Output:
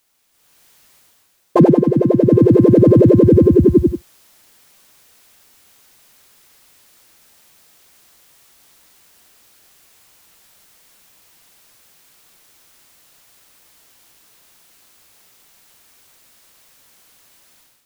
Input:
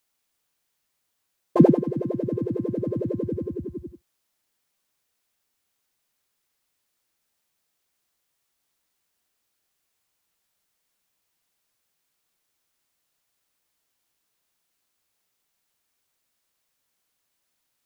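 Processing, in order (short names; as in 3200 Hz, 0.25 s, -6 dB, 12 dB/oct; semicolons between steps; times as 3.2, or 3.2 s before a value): AGC gain up to 14 dB; maximiser +11.5 dB; gain -1 dB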